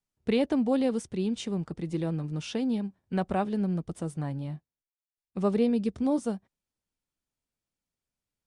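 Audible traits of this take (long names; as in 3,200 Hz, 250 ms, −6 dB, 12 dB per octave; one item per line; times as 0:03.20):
background noise floor −95 dBFS
spectral slope −7.0 dB per octave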